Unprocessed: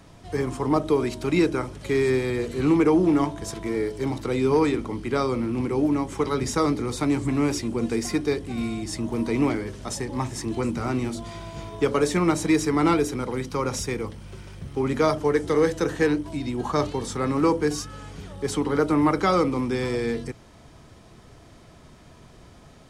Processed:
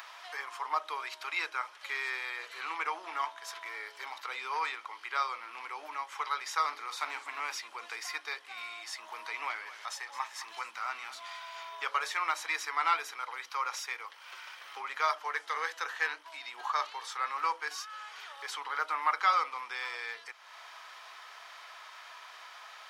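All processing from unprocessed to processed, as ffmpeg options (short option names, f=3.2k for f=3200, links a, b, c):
-filter_complex "[0:a]asettb=1/sr,asplit=3[a][b][c];[a]atrim=end=6.684[d];[b]atrim=start=6.68:end=7.4,asetpts=PTS-STARTPTS,afade=t=in:d=0.004:c=qsin,afade=t=out:st=0.716:d=0.004:c=qsin,lowshelf=f=180:g=10,asplit=2[e][f];[f]adelay=47,volume=-12dB[g];[e][g]amix=inputs=2:normalize=0,atrim=end_sample=31752,asoftclip=type=hard:threshold=-14dB[h];[c]atrim=start=7.396[i];[d][h]acrossfade=d=0.004:c1=hsin:c2=qsin[j];[j][i]acrossfade=d=0.004:c1=qsin:c2=hsin,asettb=1/sr,asplit=3[k][l][m];[k]atrim=end=9.294[n];[l]atrim=start=9.29:end=11.55,asetpts=PTS-STARTPTS,afade=t=in:d=0.004:c=qsin,afade=t=out:st=2.256:d=0.004:c=qsin,asubboost=boost=12:cutoff=130,aecho=1:1:216:0.178,atrim=end_sample=99666[o];[m]atrim=start=11.546[p];[n][o]acrossfade=d=0.004:c1=hsin:c2=qsin[q];[q][p]acrossfade=d=0.004:c1=qsin:c2=hsin,highpass=f=1k:w=0.5412,highpass=f=1k:w=1.3066,equalizer=f=8.6k:t=o:w=1.1:g=-15,acompressor=mode=upward:threshold=-38dB:ratio=2.5"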